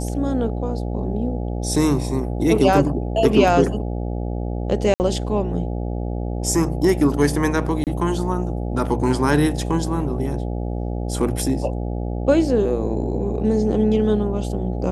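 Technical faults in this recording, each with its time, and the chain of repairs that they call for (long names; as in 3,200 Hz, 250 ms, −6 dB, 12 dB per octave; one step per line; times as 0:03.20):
mains buzz 60 Hz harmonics 14 −25 dBFS
0:04.94–0:05.00: drop-out 59 ms
0:07.84–0:07.87: drop-out 28 ms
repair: hum removal 60 Hz, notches 14
repair the gap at 0:04.94, 59 ms
repair the gap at 0:07.84, 28 ms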